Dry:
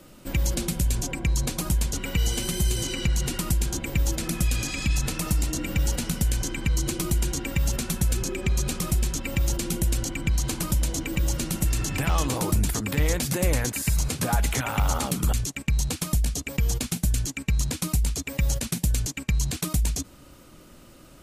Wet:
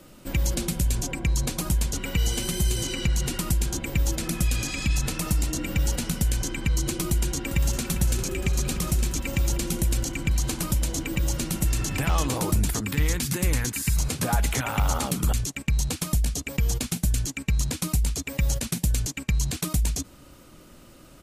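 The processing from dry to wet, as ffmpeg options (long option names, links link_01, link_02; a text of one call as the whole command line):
ffmpeg -i in.wav -filter_complex "[0:a]asplit=2[link_01][link_02];[link_02]afade=type=in:start_time=7.07:duration=0.01,afade=type=out:start_time=7.87:duration=0.01,aecho=0:1:400|800|1200|1600|2000|2400|2800|3200|3600|4000|4400|4800:0.281838|0.239563|0.203628|0.173084|0.147121|0.125053|0.106295|0.0903509|0.0767983|0.0652785|0.0554867|0.0471637[link_03];[link_01][link_03]amix=inputs=2:normalize=0,asettb=1/sr,asplit=3[link_04][link_05][link_06];[link_04]atrim=end=12.854[link_07];[link_05]atrim=start=12.85:end=13.96,asetpts=PTS-STARTPTS,afade=type=in:duration=0.004:curve=qsin,afade=type=out:start_time=1.106:duration=0.004:curve=qsin,equalizer=frequency=610:width_type=o:width=0.73:gain=-12[link_08];[link_06]atrim=start=13.956[link_09];[link_07][link_08]acrossfade=duration=0.004:curve1=hsin:curve2=qsin[link_10];[link_10][link_09]acrossfade=duration=0.004:curve1=qsin:curve2=hsin" out.wav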